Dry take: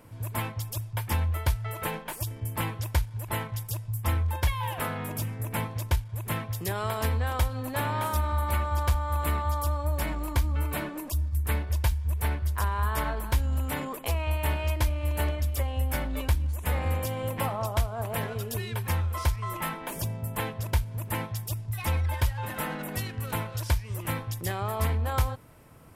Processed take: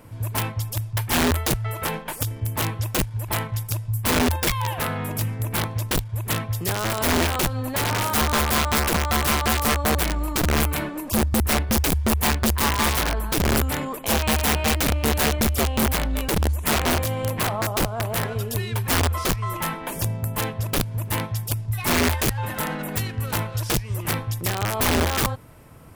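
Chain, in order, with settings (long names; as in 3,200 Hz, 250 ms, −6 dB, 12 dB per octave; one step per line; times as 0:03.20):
low-shelf EQ 160 Hz +2.5 dB
wrap-around overflow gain 21 dB
level +5 dB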